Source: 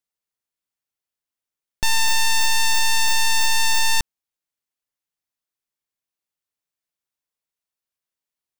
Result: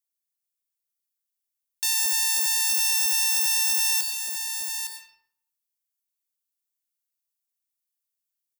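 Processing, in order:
first difference
single-tap delay 861 ms −7 dB
on a send at −4.5 dB: convolution reverb RT60 0.70 s, pre-delay 89 ms

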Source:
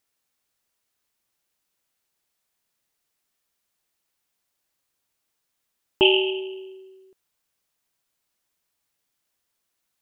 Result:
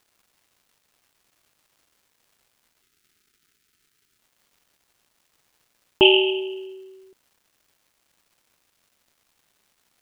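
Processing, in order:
surface crackle 520 per second −56 dBFS
gain on a spectral selection 0:02.81–0:04.18, 470–1,200 Hz −12 dB
level +3 dB

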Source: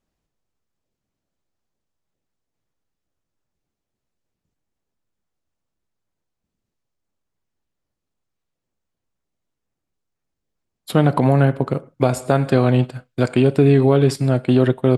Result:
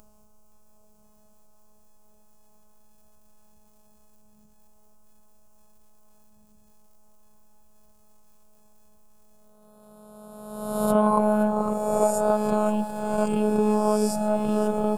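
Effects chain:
peak hold with a rise ahead of every peak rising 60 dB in 1.34 s
parametric band 3,800 Hz −15 dB 1.1 octaves
upward compression, threshold −32 dBFS
phaser with its sweep stopped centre 780 Hz, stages 4
phases set to zero 212 Hz
feedback echo at a low word length 520 ms, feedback 80%, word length 8 bits, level −14 dB

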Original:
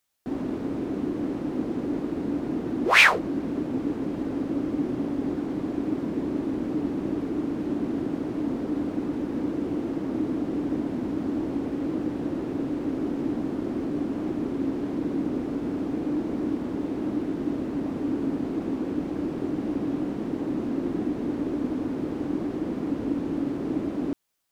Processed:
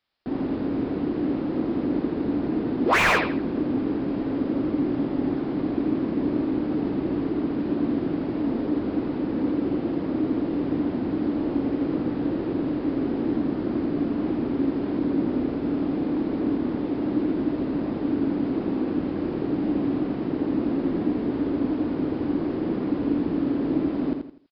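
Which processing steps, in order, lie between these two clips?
downsampling to 11,025 Hz
repeating echo 83 ms, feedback 32%, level −5.5 dB
slew-rate limiting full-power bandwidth 190 Hz
level +2 dB

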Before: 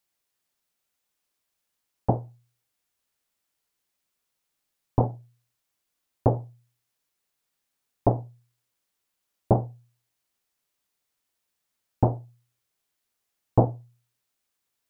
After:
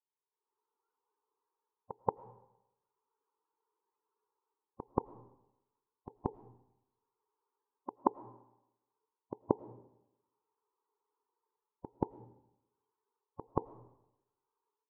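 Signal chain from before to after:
noise reduction from a noise print of the clip's start 13 dB
automatic gain control gain up to 15.5 dB
pair of resonant band-passes 630 Hz, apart 1.1 octaves
spectral peaks only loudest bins 32
gate with flip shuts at −24 dBFS, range −33 dB
echo ahead of the sound 180 ms −14 dB
on a send at −18 dB: convolution reverb RT60 0.90 s, pre-delay 65 ms
on the sum: level +9 dB

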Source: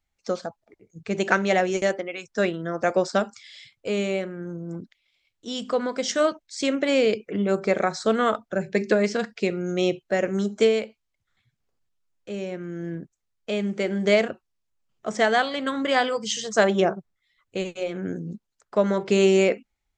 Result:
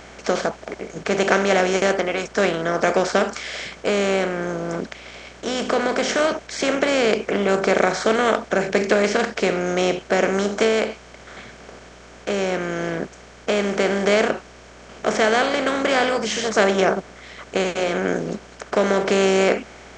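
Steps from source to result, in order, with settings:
compressor on every frequency bin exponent 0.4
mains hum 60 Hz, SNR 29 dB
level −2.5 dB

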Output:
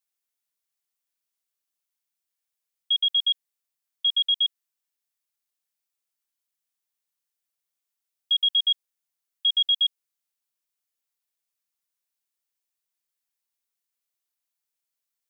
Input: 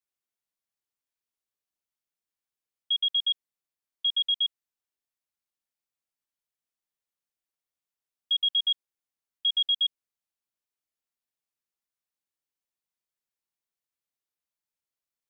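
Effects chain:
spectral tilt +2 dB per octave

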